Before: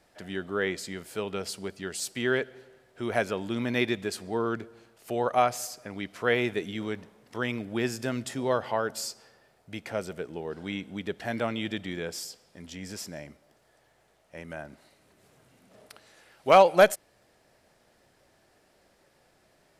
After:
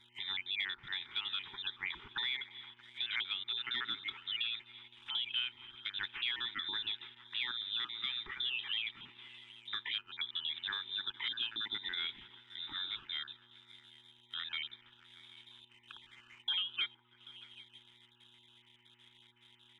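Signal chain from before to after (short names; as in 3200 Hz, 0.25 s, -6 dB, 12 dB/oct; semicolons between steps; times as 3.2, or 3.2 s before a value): random spectral dropouts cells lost 28%; inverted band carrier 3800 Hz; compressor 12:1, threshold -35 dBFS, peak gain reduction 22.5 dB; tilt shelf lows -5 dB, about 800 Hz; delay with a stepping band-pass 0.157 s, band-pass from 360 Hz, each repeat 0.7 oct, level -9 dB; buzz 120 Hz, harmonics 8, -69 dBFS -2 dB/oct; elliptic band-stop 400–860 Hz; sample leveller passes 1; treble ducked by the level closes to 2900 Hz, closed at -42 dBFS; gain -2 dB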